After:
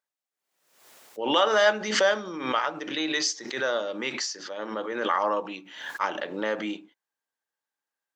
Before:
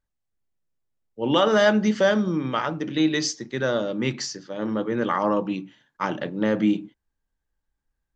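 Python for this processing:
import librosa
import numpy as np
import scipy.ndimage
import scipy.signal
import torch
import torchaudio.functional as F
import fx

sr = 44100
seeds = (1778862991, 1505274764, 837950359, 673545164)

y = scipy.signal.sosfilt(scipy.signal.butter(2, 580.0, 'highpass', fs=sr, output='sos'), x)
y = fx.pre_swell(y, sr, db_per_s=71.0)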